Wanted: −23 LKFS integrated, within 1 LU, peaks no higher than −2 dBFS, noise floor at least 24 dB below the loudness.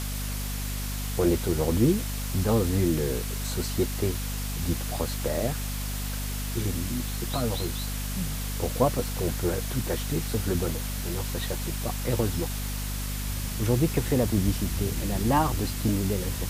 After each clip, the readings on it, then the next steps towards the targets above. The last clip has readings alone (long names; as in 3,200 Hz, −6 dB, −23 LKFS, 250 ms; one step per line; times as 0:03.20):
mains hum 50 Hz; hum harmonics up to 250 Hz; level of the hum −30 dBFS; background noise floor −31 dBFS; target noise floor −52 dBFS; integrated loudness −28.0 LKFS; sample peak −8.5 dBFS; target loudness −23.0 LKFS
→ hum removal 50 Hz, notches 5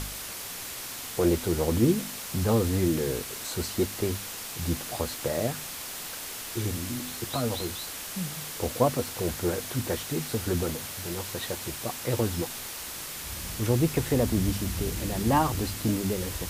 mains hum none found; background noise floor −38 dBFS; target noise floor −53 dBFS
→ broadband denoise 15 dB, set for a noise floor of −38 dBFS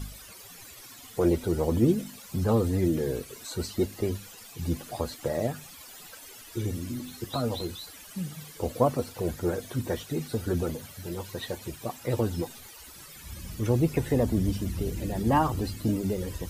background noise floor −48 dBFS; target noise floor −54 dBFS
→ broadband denoise 6 dB, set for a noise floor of −48 dBFS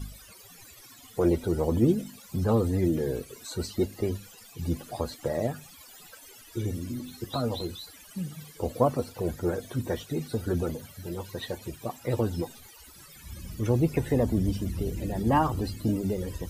background noise floor −51 dBFS; target noise floor −54 dBFS
→ broadband denoise 6 dB, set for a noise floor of −51 dBFS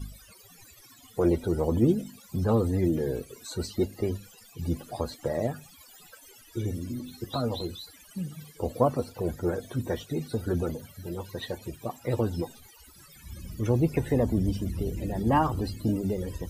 background noise floor −54 dBFS; integrated loudness −29.5 LKFS; sample peak −9.5 dBFS; target loudness −23.0 LKFS
→ level +6.5 dB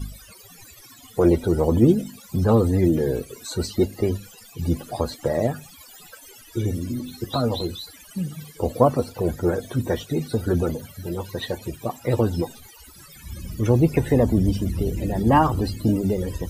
integrated loudness −23.0 LKFS; sample peak −3.0 dBFS; background noise floor −47 dBFS